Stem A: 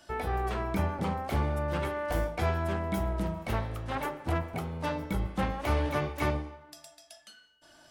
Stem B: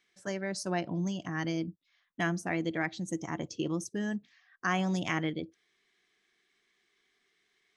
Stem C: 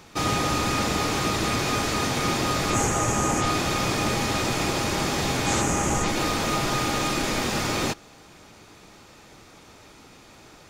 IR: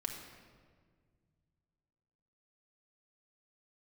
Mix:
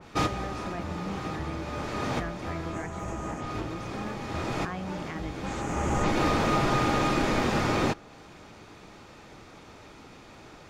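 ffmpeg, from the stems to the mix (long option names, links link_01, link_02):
-filter_complex "[0:a]adelay=50,volume=-8.5dB[link_01];[1:a]volume=-6.5dB,asplit=2[link_02][link_03];[2:a]volume=1.5dB[link_04];[link_03]apad=whole_len=471838[link_05];[link_04][link_05]sidechaincompress=threshold=-49dB:ratio=5:attack=6.7:release=720[link_06];[link_01][link_02][link_06]amix=inputs=3:normalize=0,lowpass=frequency=2900:poles=1,adynamicequalizer=threshold=0.00708:dfrequency=2200:dqfactor=0.7:tfrequency=2200:tqfactor=0.7:attack=5:release=100:ratio=0.375:range=2:mode=cutabove:tftype=highshelf"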